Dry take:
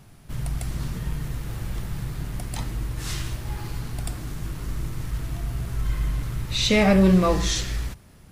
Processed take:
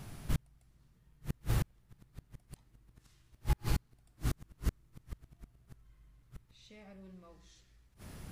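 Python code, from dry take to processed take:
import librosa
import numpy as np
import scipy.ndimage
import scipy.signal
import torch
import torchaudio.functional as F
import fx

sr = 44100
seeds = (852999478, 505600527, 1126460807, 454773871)

y = fx.gate_flip(x, sr, shuts_db=-21.0, range_db=-39)
y = y * 10.0 ** (2.0 / 20.0)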